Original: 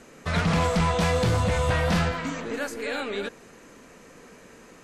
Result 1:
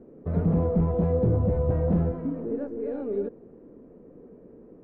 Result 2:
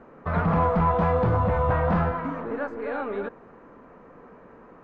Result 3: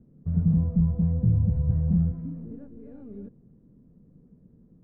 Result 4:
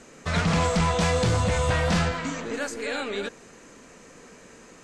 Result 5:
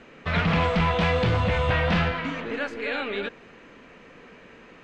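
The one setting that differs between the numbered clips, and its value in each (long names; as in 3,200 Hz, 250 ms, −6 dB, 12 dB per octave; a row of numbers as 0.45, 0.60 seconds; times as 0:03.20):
low-pass with resonance, frequency: 400, 1,100, 160, 7,900, 2,900 Hertz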